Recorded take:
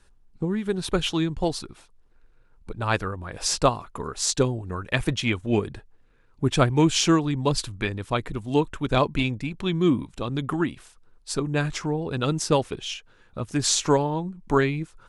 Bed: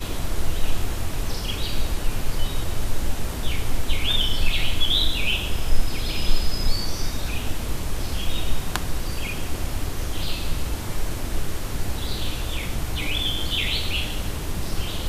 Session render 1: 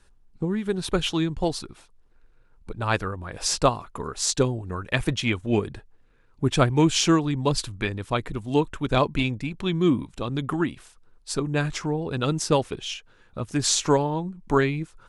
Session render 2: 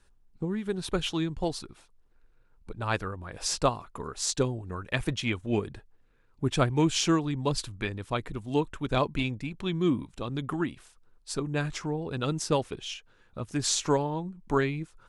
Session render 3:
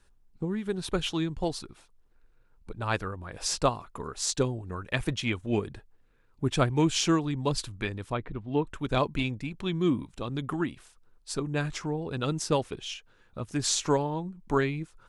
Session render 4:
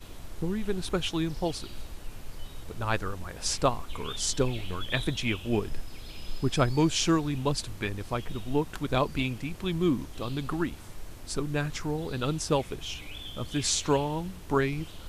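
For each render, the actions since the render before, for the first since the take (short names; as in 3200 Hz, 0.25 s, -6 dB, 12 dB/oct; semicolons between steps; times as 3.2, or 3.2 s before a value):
nothing audible
gain -5 dB
8.12–8.67 air absorption 330 m
add bed -16.5 dB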